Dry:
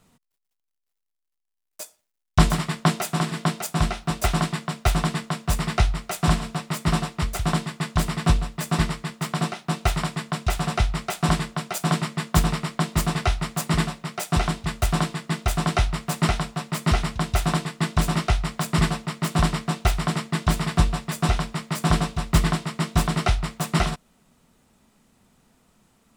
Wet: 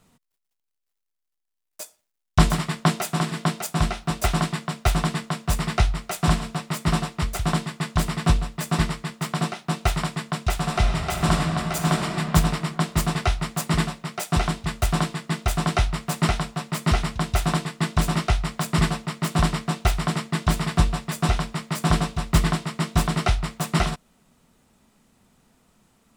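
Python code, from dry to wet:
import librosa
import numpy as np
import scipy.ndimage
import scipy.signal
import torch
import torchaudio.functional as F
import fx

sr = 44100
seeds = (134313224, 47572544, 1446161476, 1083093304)

y = fx.reverb_throw(x, sr, start_s=10.61, length_s=1.54, rt60_s=2.8, drr_db=2.5)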